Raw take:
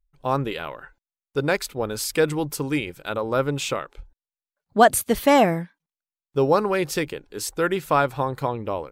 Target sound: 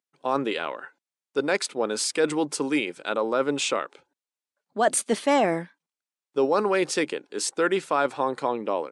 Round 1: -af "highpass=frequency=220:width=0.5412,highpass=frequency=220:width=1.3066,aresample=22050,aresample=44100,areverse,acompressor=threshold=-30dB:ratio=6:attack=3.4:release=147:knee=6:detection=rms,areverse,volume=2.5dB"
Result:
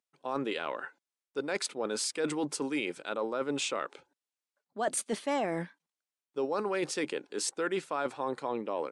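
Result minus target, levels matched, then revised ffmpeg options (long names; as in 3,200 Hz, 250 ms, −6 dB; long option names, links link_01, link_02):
downward compressor: peak gain reduction +10 dB
-af "highpass=frequency=220:width=0.5412,highpass=frequency=220:width=1.3066,aresample=22050,aresample=44100,areverse,acompressor=threshold=-18dB:ratio=6:attack=3.4:release=147:knee=6:detection=rms,areverse,volume=2.5dB"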